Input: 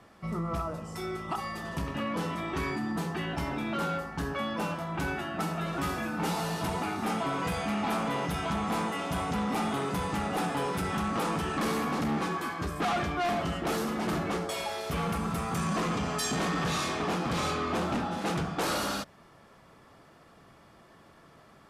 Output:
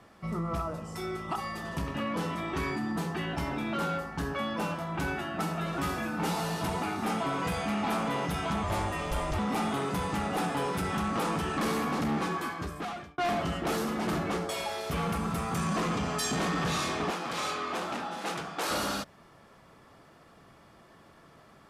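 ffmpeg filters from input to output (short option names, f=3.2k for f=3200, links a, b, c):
-filter_complex "[0:a]asettb=1/sr,asplit=3[a][b][c];[a]atrim=end=8.634[d];[b]atrim=start=8.63:end=9.39,asetpts=PTS-STARTPTS,afade=t=in:d=0.004:c=qsin,afade=t=out:st=0.756:d=0.004:c=qsin,afreqshift=-120[e];[c]atrim=start=9.386[f];[d][e]acrossfade=d=0.004:c1=hsin:c2=qsin[g];[g][f]acrossfade=d=0.004:c1=qsin:c2=hsin,asettb=1/sr,asplit=3[h][i][j];[h]atrim=end=17.104[k];[i]atrim=start=17.1:end=18.71,asetpts=PTS-STARTPTS,afade=t=in:d=0.004:c=qsin,afade=t=out:st=1.606:d=0.004:c=qsin,highpass=f=610:p=1[l];[j]atrim=start=18.706[m];[k][l]acrossfade=d=0.004:c1=hsin:c2=qsin[n];[n][m]acrossfade=d=0.004:c1=qsin:c2=hsin,asplit=2[o][p];[o]atrim=end=13.18,asetpts=PTS-STARTPTS,afade=t=out:st=12.44:d=0.74[q];[p]atrim=start=13.18,asetpts=PTS-STARTPTS,afade=t=in:d=0.004:c=hsin[r];[q][r]concat=n=2:v=0:a=1"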